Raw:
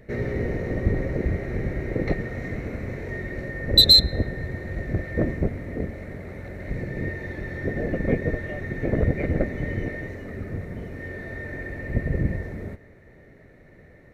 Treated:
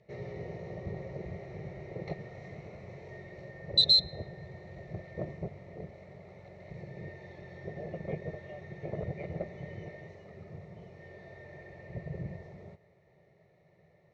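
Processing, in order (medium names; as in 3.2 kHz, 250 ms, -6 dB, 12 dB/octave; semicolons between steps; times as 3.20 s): cabinet simulation 150–5900 Hz, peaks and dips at 160 Hz +6 dB, 490 Hz -6 dB, 1.5 kHz +8 dB; static phaser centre 640 Hz, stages 4; trim -7 dB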